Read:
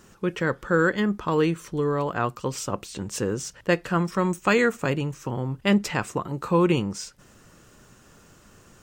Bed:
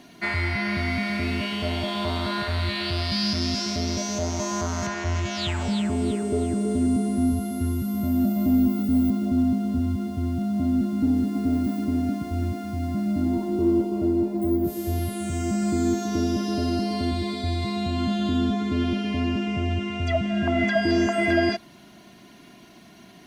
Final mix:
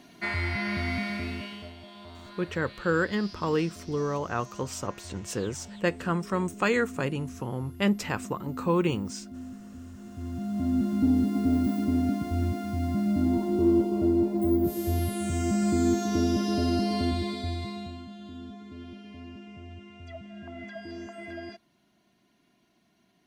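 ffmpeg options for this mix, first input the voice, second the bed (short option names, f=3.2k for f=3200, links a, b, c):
-filter_complex "[0:a]adelay=2150,volume=-4.5dB[a];[1:a]volume=14.5dB,afade=t=out:st=0.97:d=0.77:silence=0.16788,afade=t=in:st=9.96:d=1.06:silence=0.11885,afade=t=out:st=16.99:d=1.06:silence=0.125893[b];[a][b]amix=inputs=2:normalize=0"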